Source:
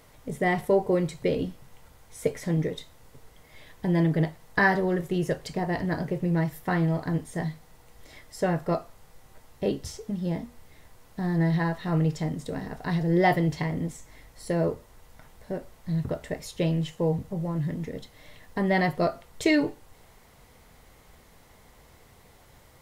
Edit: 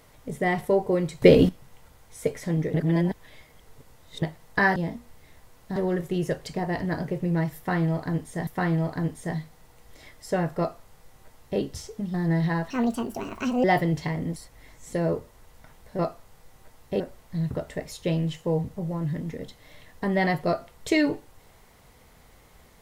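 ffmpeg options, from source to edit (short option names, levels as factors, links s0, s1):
-filter_complex "[0:a]asplit=15[s0][s1][s2][s3][s4][s5][s6][s7][s8][s9][s10][s11][s12][s13][s14];[s0]atrim=end=1.222[s15];[s1]atrim=start=1.218:end=1.492,asetpts=PTS-STARTPTS,volume=3.76[s16];[s2]atrim=start=1.488:end=2.742[s17];[s3]atrim=start=2.738:end=4.222,asetpts=PTS-STARTPTS,areverse[s18];[s4]atrim=start=4.218:end=4.762[s19];[s5]atrim=start=10.238:end=11.242[s20];[s6]atrim=start=4.758:end=7.472[s21];[s7]atrim=start=6.568:end=10.242[s22];[s8]atrim=start=11.238:end=11.804[s23];[s9]atrim=start=11.8:end=13.19,asetpts=PTS-STARTPTS,asetrate=65268,aresample=44100,atrim=end_sample=41418,asetpts=PTS-STARTPTS[s24];[s10]atrim=start=13.186:end=13.912[s25];[s11]atrim=start=13.908:end=14.482,asetpts=PTS-STARTPTS,areverse[s26];[s12]atrim=start=14.478:end=15.542[s27];[s13]atrim=start=8.688:end=9.702[s28];[s14]atrim=start=15.538[s29];[s15][s16]acrossfade=d=0.004:c1=hsin:c2=hsin[s30];[s30][s17]acrossfade=d=0.004:c1=hsin:c2=hsin[s31];[s31][s18]acrossfade=d=0.004:c1=hsin:c2=hsin[s32];[s32][s19]acrossfade=d=0.004:c1=hsin:c2=hsin[s33];[s33][s20]acrossfade=d=0.004:c1=hsin:c2=hsin[s34];[s34][s21]acrossfade=d=0.004:c1=hsin:c2=hsin[s35];[s35][s22]acrossfade=d=0.004:c1=hsin:c2=hsin[s36];[s36][s23]acrossfade=d=0.004:c1=hsin:c2=hsin[s37];[s37][s24]acrossfade=d=0.004:c1=hsin:c2=hsin[s38];[s38][s25]acrossfade=d=0.004:c1=hsin:c2=hsin[s39];[s39][s26]acrossfade=d=0.004:c1=hsin:c2=hsin[s40];[s40][s27]acrossfade=d=0.004:c1=hsin:c2=hsin[s41];[s41][s28]acrossfade=d=0.004:c1=hsin:c2=hsin[s42];[s42][s29]acrossfade=d=0.004:c1=hsin:c2=hsin"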